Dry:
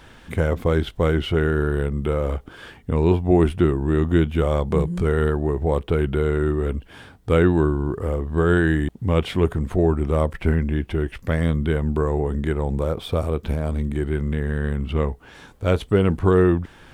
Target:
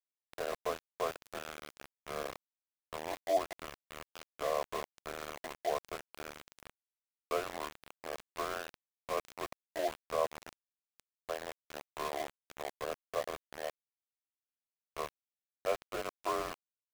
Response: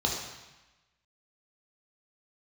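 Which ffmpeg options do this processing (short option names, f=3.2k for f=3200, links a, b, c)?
-filter_complex "[0:a]asplit=3[a][b][c];[a]bandpass=f=730:t=q:w=8,volume=0dB[d];[b]bandpass=f=1.09k:t=q:w=8,volume=-6dB[e];[c]bandpass=f=2.44k:t=q:w=8,volume=-9dB[f];[d][e][f]amix=inputs=3:normalize=0,highpass=f=480:t=q:w=0.5412,highpass=f=480:t=q:w=1.307,lowpass=f=3.4k:t=q:w=0.5176,lowpass=f=3.4k:t=q:w=0.7071,lowpass=f=3.4k:t=q:w=1.932,afreqshift=-52,asplit=2[g][h];[1:a]atrim=start_sample=2205,adelay=136[i];[h][i]afir=irnorm=-1:irlink=0,volume=-24dB[j];[g][j]amix=inputs=2:normalize=0,aeval=exprs='val(0)*gte(abs(val(0)),0.0158)':c=same,volume=1dB"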